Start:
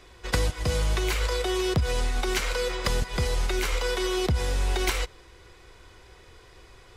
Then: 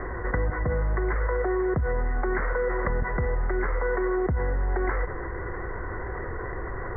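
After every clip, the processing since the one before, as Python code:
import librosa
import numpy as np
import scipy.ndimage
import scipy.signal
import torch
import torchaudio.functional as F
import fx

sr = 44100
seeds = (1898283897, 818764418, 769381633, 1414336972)

y = scipy.signal.sosfilt(scipy.signal.cheby1(8, 1.0, 2000.0, 'lowpass', fs=sr, output='sos'), x)
y = fx.env_flatten(y, sr, amount_pct=70)
y = F.gain(torch.from_numpy(y), -2.5).numpy()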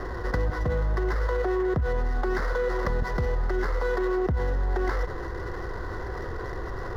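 y = scipy.signal.medfilt(x, 15)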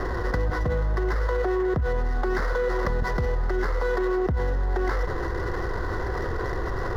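y = fx.env_flatten(x, sr, amount_pct=50)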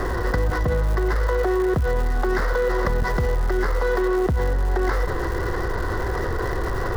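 y = fx.dmg_crackle(x, sr, seeds[0], per_s=280.0, level_db=-33.0)
y = F.gain(torch.from_numpy(y), 3.5).numpy()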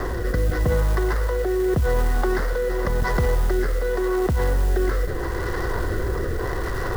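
y = fx.rotary(x, sr, hz=0.85)
y = fx.mod_noise(y, sr, seeds[1], snr_db=25)
y = F.gain(torch.from_numpy(y), 1.5).numpy()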